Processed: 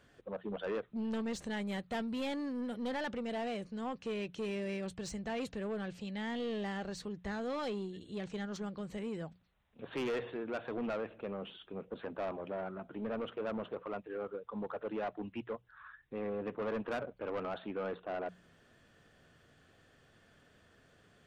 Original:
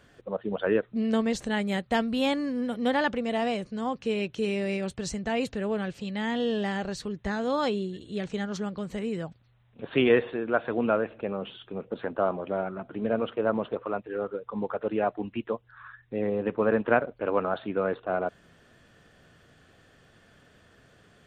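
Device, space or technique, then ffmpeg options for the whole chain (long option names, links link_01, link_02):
saturation between pre-emphasis and de-emphasis: -af "highshelf=frequency=5100:gain=11,bandreject=frequency=60:width_type=h:width=6,bandreject=frequency=120:width_type=h:width=6,bandreject=frequency=180:width_type=h:width=6,asoftclip=type=tanh:threshold=-25.5dB,highshelf=frequency=5100:gain=-11,volume=-6.5dB"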